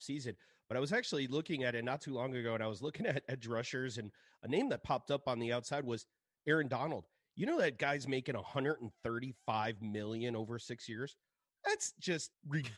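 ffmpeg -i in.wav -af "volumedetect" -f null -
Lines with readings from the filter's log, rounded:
mean_volume: -38.8 dB
max_volume: -18.8 dB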